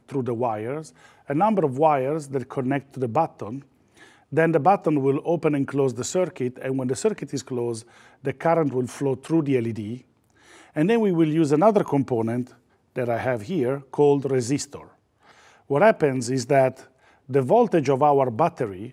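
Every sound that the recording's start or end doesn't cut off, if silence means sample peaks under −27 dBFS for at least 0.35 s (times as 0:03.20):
0:01.30–0:03.58
0:04.33–0:07.79
0:08.25–0:09.95
0:10.76–0:12.42
0:12.97–0:14.76
0:15.70–0:16.70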